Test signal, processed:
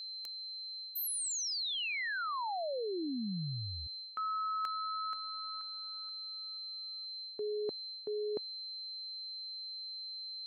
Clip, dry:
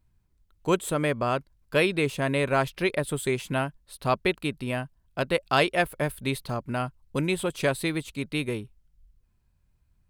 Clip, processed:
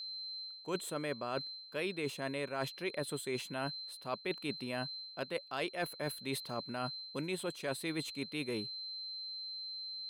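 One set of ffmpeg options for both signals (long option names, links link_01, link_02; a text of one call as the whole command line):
ffmpeg -i in.wav -af "aeval=exprs='val(0)+0.01*sin(2*PI*4100*n/s)':channel_layout=same,highpass=180,areverse,acompressor=threshold=-34dB:ratio=6,areverse,volume=-1dB" out.wav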